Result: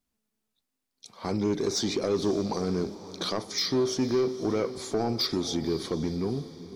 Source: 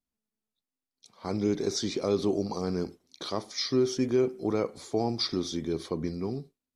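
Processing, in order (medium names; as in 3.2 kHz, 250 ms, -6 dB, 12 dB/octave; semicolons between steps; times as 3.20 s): in parallel at +3 dB: compression, threshold -35 dBFS, peak gain reduction 14 dB; on the sum: saturation -19 dBFS, distortion -15 dB; echo that smears into a reverb 520 ms, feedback 43%, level -14.5 dB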